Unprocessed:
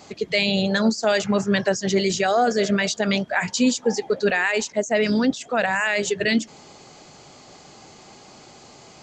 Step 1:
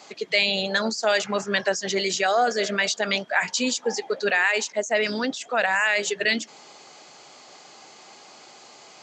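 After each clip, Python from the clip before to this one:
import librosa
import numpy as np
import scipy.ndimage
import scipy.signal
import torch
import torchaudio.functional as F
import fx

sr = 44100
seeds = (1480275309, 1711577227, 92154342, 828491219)

y = fx.weighting(x, sr, curve='A')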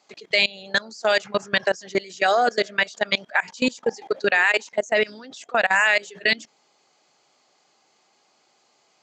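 y = fx.level_steps(x, sr, step_db=23)
y = y * librosa.db_to_amplitude(5.0)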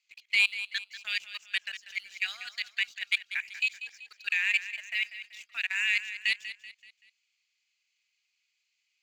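y = fx.ladder_highpass(x, sr, hz=2200.0, resonance_pct=65)
y = fx.leveller(y, sr, passes=1)
y = fx.echo_feedback(y, sr, ms=191, feedback_pct=42, wet_db=-12.5)
y = y * librosa.db_to_amplitude(-4.0)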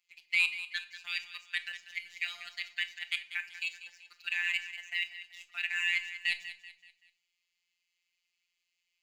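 y = fx.robotise(x, sr, hz=174.0)
y = fx.room_shoebox(y, sr, seeds[0], volume_m3=800.0, walls='furnished', distance_m=0.89)
y = y * librosa.db_to_amplitude(-2.0)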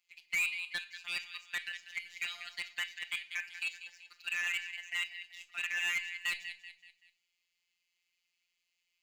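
y = np.clip(x, -10.0 ** (-28.0 / 20.0), 10.0 ** (-28.0 / 20.0))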